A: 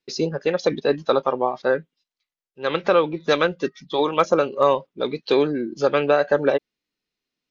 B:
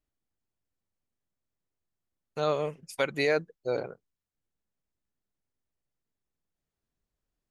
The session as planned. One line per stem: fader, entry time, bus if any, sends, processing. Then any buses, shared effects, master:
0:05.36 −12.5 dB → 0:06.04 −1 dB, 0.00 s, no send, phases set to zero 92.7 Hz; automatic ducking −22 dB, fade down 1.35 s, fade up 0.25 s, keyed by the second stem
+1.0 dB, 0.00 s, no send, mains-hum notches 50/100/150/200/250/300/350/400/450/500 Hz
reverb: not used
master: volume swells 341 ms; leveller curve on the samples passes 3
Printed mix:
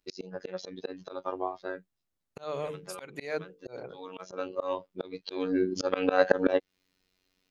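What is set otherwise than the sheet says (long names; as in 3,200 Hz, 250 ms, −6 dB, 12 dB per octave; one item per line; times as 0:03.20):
stem A −12.5 dB → −1.0 dB
master: missing leveller curve on the samples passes 3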